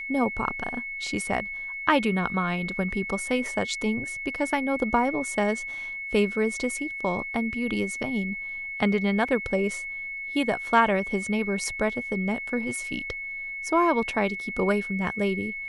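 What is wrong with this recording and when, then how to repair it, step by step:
whine 2.2 kHz -32 dBFS
9.28 s: dropout 3.6 ms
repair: band-stop 2.2 kHz, Q 30; interpolate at 9.28 s, 3.6 ms

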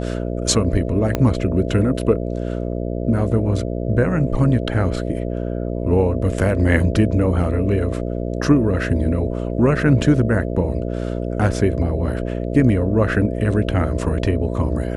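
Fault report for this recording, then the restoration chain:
buzz 60 Hz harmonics 11 -24 dBFS
1.15 s: pop -6 dBFS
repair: de-click; de-hum 60 Hz, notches 11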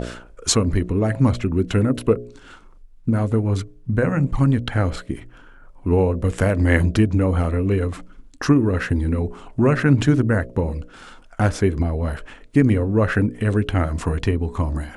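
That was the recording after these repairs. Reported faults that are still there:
1.15 s: pop

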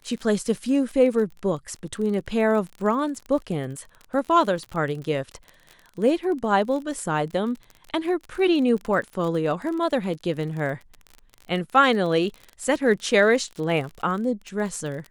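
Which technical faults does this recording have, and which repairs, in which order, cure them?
crackle 33 per s -31 dBFS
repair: de-click

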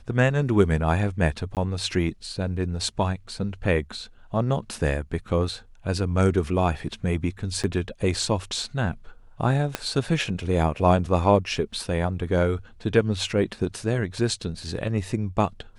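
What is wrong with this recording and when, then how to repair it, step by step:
1.55–1.57 s: dropout 18 ms
7.63–7.64 s: dropout 7.3 ms
9.75 s: pop -9 dBFS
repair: de-click; interpolate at 1.55 s, 18 ms; interpolate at 7.63 s, 7.3 ms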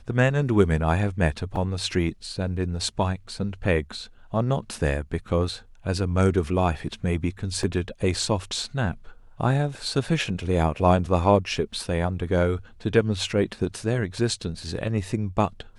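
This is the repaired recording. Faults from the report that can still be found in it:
9.75 s: pop

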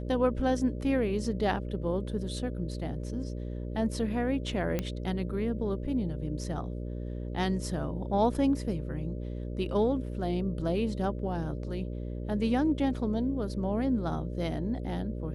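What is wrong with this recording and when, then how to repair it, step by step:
buzz 60 Hz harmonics 10 -36 dBFS
4.79 s: pop -16 dBFS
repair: de-click; de-hum 60 Hz, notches 10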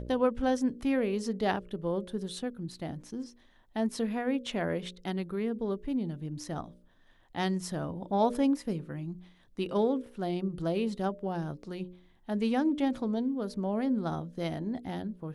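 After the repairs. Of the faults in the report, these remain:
nothing left

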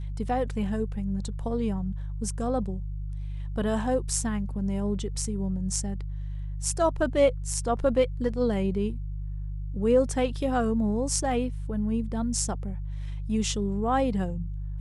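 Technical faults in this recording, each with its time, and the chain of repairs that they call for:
hum 50 Hz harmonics 3 -33 dBFS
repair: de-hum 50 Hz, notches 3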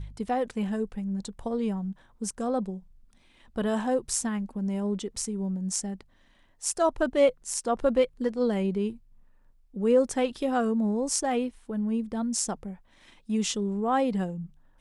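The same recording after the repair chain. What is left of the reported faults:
nothing left

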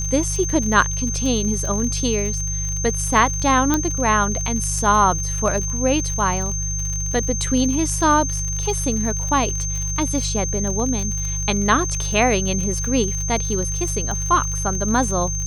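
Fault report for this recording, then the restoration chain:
crackle 50 per s -25 dBFS
hum 50 Hz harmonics 3 -26 dBFS
whine 6.3 kHz -25 dBFS
3.74 s: pop -4 dBFS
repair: de-click; de-hum 50 Hz, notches 3; band-stop 6.3 kHz, Q 30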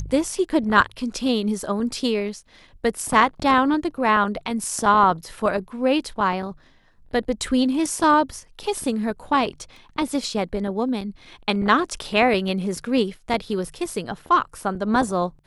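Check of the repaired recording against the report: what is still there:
nothing left

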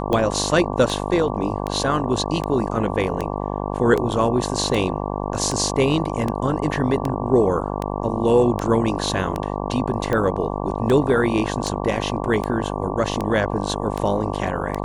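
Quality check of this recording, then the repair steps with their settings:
buzz 50 Hz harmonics 23 -26 dBFS
tick 78 rpm -11 dBFS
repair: de-click; de-hum 50 Hz, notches 23

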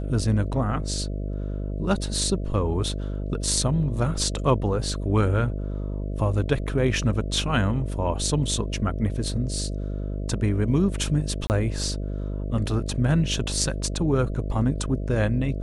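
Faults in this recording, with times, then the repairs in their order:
buzz 50 Hz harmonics 13 -29 dBFS
11.47–11.50 s: dropout 29 ms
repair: de-hum 50 Hz, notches 13; interpolate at 11.47 s, 29 ms

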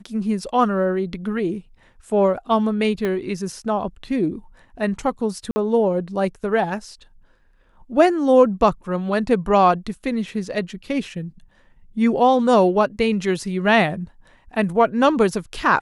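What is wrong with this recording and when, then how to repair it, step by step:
3.05 s: pop -13 dBFS
5.51–5.56 s: dropout 50 ms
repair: de-click; interpolate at 5.51 s, 50 ms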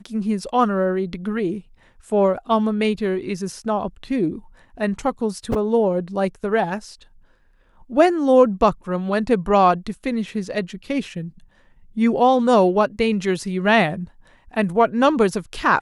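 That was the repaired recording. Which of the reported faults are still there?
3.05 s: pop

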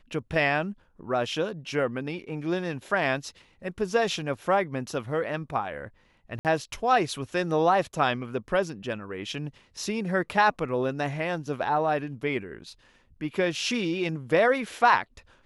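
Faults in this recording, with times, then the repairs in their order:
6.39–6.45 s: dropout 58 ms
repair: interpolate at 6.39 s, 58 ms

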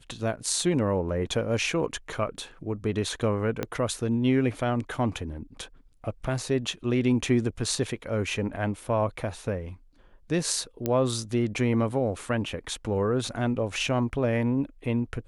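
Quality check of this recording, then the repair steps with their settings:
3.63 s: pop -14 dBFS
10.86 s: pop -13 dBFS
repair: de-click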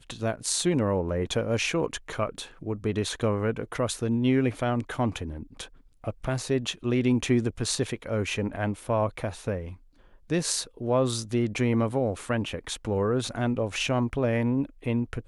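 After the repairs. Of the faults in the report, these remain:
3.63 s: pop

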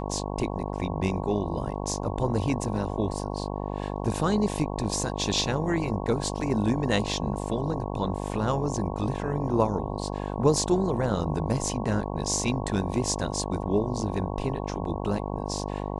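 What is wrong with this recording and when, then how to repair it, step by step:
buzz 50 Hz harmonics 22 -32 dBFS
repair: de-hum 50 Hz, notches 22

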